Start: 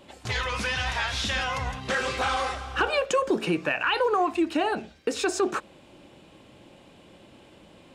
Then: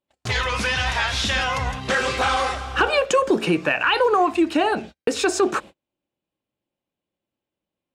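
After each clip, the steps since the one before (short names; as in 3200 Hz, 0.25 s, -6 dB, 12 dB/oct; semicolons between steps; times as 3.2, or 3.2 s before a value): gate -41 dBFS, range -40 dB; gain +5.5 dB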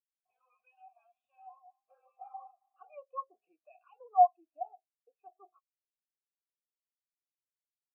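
vowel filter a; spectral expander 2.5:1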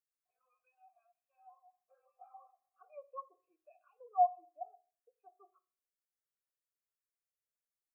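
fixed phaser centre 880 Hz, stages 6; reverb RT60 0.50 s, pre-delay 7 ms, DRR 15 dB; gain -1.5 dB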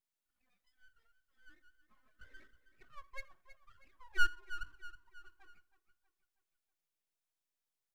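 full-wave rectifier; feedback echo 0.32 s, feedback 47%, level -14 dB; gain +2.5 dB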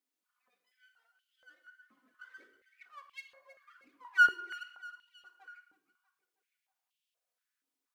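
shoebox room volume 3200 m³, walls furnished, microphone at 1.9 m; stepped high-pass 4.2 Hz 290–3000 Hz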